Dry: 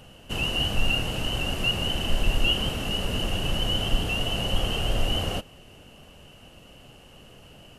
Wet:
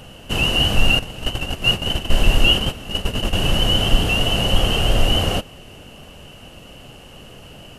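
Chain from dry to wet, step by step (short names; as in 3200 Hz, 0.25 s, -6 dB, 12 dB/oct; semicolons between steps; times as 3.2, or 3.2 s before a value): 0.99–3.35 gate -25 dBFS, range -13 dB; gain +8.5 dB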